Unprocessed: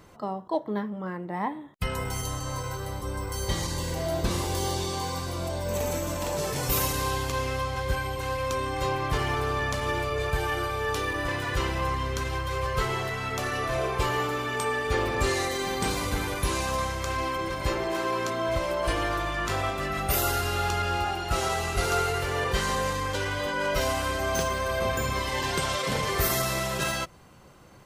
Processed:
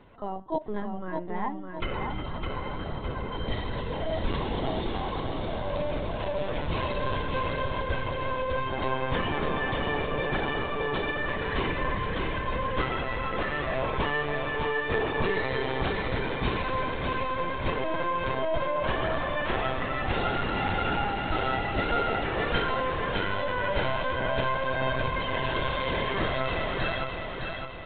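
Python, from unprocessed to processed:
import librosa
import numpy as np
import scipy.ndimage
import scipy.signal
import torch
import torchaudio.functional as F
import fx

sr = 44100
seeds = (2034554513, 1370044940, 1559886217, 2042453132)

p1 = fx.lpc_vocoder(x, sr, seeds[0], excitation='pitch_kept', order=16)
p2 = fx.notch(p1, sr, hz=1200.0, q=15.0)
p3 = p2 + fx.echo_feedback(p2, sr, ms=610, feedback_pct=48, wet_db=-5.0, dry=0)
y = p3 * 10.0 ** (-1.5 / 20.0)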